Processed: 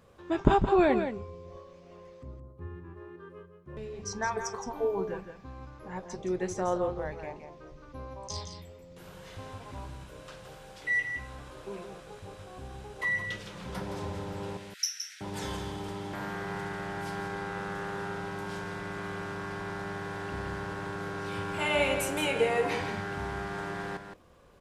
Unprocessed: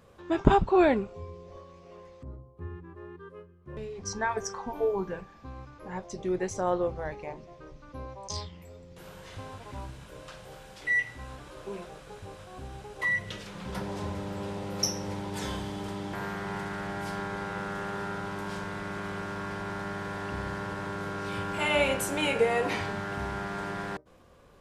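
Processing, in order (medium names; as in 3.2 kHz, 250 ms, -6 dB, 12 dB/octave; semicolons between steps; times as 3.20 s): 14.57–15.21 s: steep high-pass 1.5 kHz 72 dB/octave; delay 168 ms -8 dB; trim -2 dB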